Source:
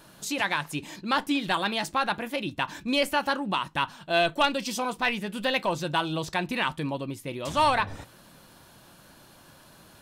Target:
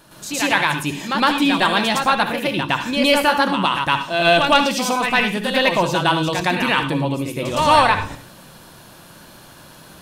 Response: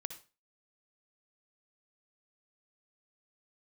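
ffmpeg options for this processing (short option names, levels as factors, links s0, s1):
-filter_complex "[0:a]asplit=2[s0][s1];[1:a]atrim=start_sample=2205,adelay=112[s2];[s1][s2]afir=irnorm=-1:irlink=0,volume=2.66[s3];[s0][s3]amix=inputs=2:normalize=0,volume=1.33"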